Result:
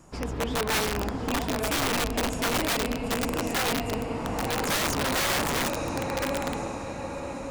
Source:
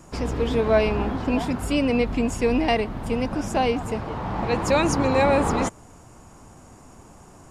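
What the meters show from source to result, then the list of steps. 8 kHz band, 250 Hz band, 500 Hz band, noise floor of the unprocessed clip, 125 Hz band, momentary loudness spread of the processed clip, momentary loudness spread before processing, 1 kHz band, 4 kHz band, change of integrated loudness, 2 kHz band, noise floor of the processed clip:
+5.5 dB, -6.5 dB, -7.0 dB, -48 dBFS, -5.0 dB, 8 LU, 8 LU, -3.5 dB, +4.5 dB, -4.5 dB, +1.0 dB, -35 dBFS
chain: diffused feedback echo 0.978 s, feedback 53%, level -4.5 dB; wrapped overs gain 15 dB; gain -5.5 dB

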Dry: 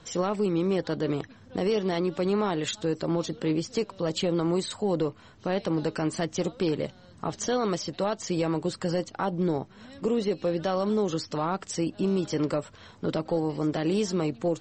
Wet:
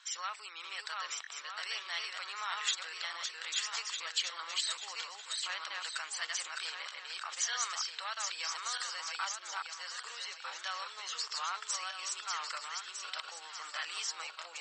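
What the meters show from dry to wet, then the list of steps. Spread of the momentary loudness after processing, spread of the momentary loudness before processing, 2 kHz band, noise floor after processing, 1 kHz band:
7 LU, 6 LU, +2.0 dB, -50 dBFS, -6.5 dB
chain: regenerating reverse delay 0.627 s, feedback 52%, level -2 dB; HPF 1300 Hz 24 dB/oct

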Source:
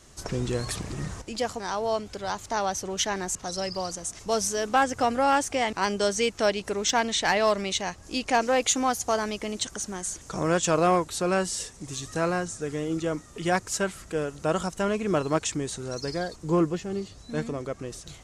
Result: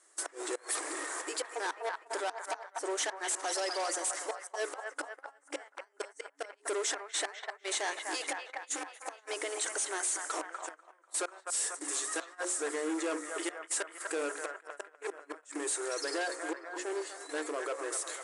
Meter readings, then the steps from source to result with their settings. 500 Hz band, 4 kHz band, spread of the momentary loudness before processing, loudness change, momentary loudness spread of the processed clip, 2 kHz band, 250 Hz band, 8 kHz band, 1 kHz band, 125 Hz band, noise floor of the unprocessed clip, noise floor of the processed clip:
-10.5 dB, -8.5 dB, 10 LU, -8.5 dB, 11 LU, -6.0 dB, -13.5 dB, -3.0 dB, -12.0 dB, under -40 dB, -49 dBFS, -65 dBFS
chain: band shelf 4000 Hz -12.5 dB; in parallel at -0.5 dB: compressor 16:1, threshold -33 dBFS, peak gain reduction 17 dB; on the sum: notches 60/120/180/240/300/360/420/480/540 Hz; flipped gate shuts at -16 dBFS, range -30 dB; band-limited delay 0.246 s, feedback 61%, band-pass 1300 Hz, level -7.5 dB; gate -41 dBFS, range -16 dB; tilt shelf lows -7 dB, about 1300 Hz; reverse; upward compressor, threshold -48 dBFS; reverse; overloaded stage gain 32 dB; FFT band-pass 280–11000 Hz; gain +2 dB

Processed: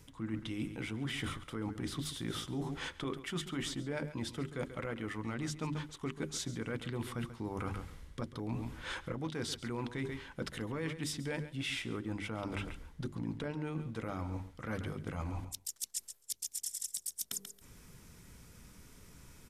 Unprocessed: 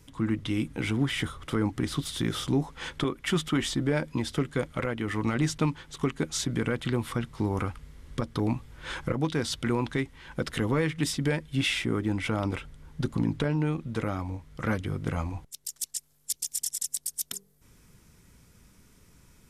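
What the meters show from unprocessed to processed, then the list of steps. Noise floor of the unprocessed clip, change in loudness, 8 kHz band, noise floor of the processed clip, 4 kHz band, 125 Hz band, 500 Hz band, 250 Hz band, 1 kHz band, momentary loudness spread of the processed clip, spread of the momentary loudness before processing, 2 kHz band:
-62 dBFS, -9.5 dB, -7.0 dB, -59 dBFS, -8.0 dB, -10.0 dB, -10.0 dB, -10.5 dB, -9.0 dB, 8 LU, 8 LU, -8.5 dB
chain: notches 50/100/150/200/250/300/350/400 Hz; feedback echo 0.137 s, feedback 17%, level -14.5 dB; reverse; compressor 6:1, threshold -38 dBFS, peak gain reduction 15.5 dB; reverse; gain +2 dB

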